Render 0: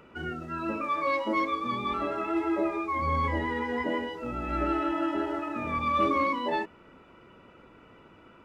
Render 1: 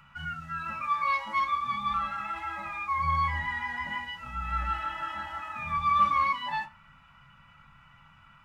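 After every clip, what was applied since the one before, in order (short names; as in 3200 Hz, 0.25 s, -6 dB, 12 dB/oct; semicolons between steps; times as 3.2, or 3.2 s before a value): Chebyshev band-stop 140–1100 Hz, order 2; reverb, pre-delay 4 ms, DRR 3 dB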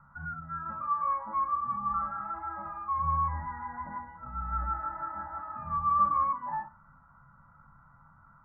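in parallel at -11.5 dB: soft clip -28 dBFS, distortion -9 dB; on the sum: steep low-pass 1500 Hz 48 dB/oct; gain -2.5 dB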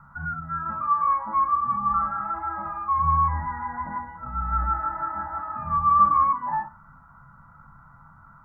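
notch 560 Hz, Q 13; gain +7.5 dB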